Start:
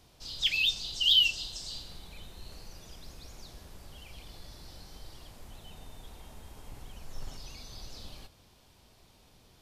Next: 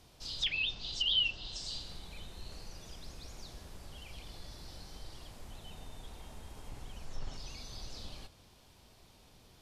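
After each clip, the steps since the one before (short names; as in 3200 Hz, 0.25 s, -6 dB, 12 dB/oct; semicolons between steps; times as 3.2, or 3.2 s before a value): treble ducked by the level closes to 2200 Hz, closed at -26.5 dBFS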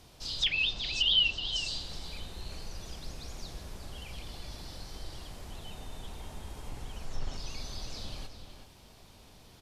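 outdoor echo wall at 64 m, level -7 dB; gain +4.5 dB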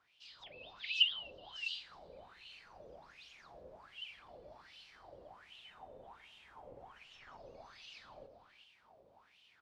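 wah 1.3 Hz 510–3000 Hz, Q 7.8; AGC gain up to 5.5 dB; low shelf 240 Hz +10 dB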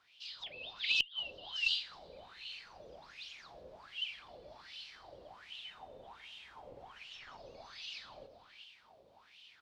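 bell 4000 Hz +9.5 dB 1.6 oct; flipped gate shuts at -18 dBFS, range -29 dB; added harmonics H 4 -25 dB, 6 -35 dB, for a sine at -16.5 dBFS; gain +1 dB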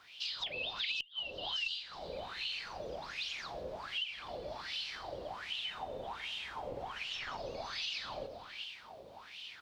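compressor 12:1, threshold -46 dBFS, peak gain reduction 21 dB; gain +11 dB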